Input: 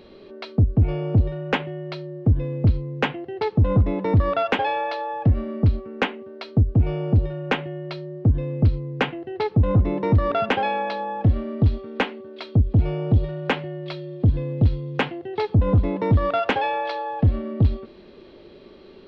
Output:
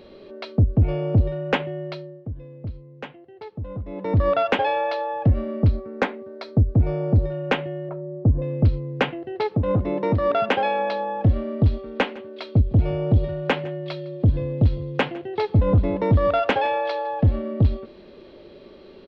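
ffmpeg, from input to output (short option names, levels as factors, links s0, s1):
-filter_complex "[0:a]asettb=1/sr,asplit=3[s0][s1][s2];[s0]atrim=end=5.704[s3];[s1]atrim=start=5.7:end=7.32,asetpts=PTS-STARTPTS,afade=t=in:d=0.004:c=qsin,afade=t=out:st=1.616:d=0.004:c=qsin,equalizer=f=2900:w=3.9:g=-11[s4];[s2]atrim=start=7.316[s5];[s3][s4]acrossfade=d=0.004:c1=hsin:c2=qsin[s6];[s6][s5]acrossfade=d=0.004:c1=qsin:c2=hsin,asettb=1/sr,asplit=3[s7][s8][s9];[s7]atrim=end=7.894[s10];[s8]atrim=start=7.89:end=8.42,asetpts=PTS-STARTPTS,afade=t=in:d=0.004:c=qsin,afade=t=out:st=0.526:d=0.004:c=qsin,lowpass=f=1200:w=0.5412,lowpass=f=1200:w=1.3066[s11];[s9]atrim=start=8.416[s12];[s10][s11]acrossfade=d=0.004:c1=hsin:c2=qsin[s13];[s13][s12]acrossfade=d=0.004:c1=qsin:c2=hsin,asettb=1/sr,asplit=3[s14][s15][s16];[s14]atrim=end=9.354[s17];[s15]atrim=start=9.35:end=10.79,asetpts=PTS-STARTPTS,afade=t=in:d=0.004:c=qsin,afade=t=out:st=1.436:d=0.004:c=qsin,highpass=f=160:p=1[s18];[s16]atrim=start=10.786[s19];[s17][s18]acrossfade=d=0.004:c1=hsin:c2=qsin[s20];[s20][s19]acrossfade=d=0.004:c1=qsin:c2=hsin,asplit=3[s21][s22][s23];[s21]afade=t=out:st=11.85:d=0.02[s24];[s22]aecho=1:1:157:0.0841,afade=t=in:st=11.85:d=0.02,afade=t=out:st=17.36:d=0.02[s25];[s23]afade=t=in:st=17.36:d=0.02[s26];[s24][s25][s26]amix=inputs=3:normalize=0,asplit=3[s27][s28][s29];[s27]atrim=end=2.25,asetpts=PTS-STARTPTS,afade=t=out:st=1.84:d=0.41:silence=0.188365[s30];[s28]atrim=start=2.25:end=3.86,asetpts=PTS-STARTPTS,volume=0.188[s31];[s29]atrim=start=3.86,asetpts=PTS-STARTPTS,afade=t=in:d=0.41:silence=0.188365[s32];[s30][s31][s32]concat=n=3:v=0:a=1,equalizer=f=570:w=4.4:g=5"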